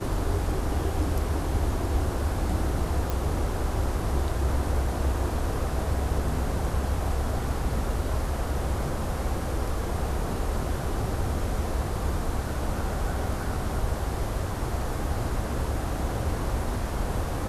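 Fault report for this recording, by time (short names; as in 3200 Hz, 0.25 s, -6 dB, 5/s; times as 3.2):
3.1 pop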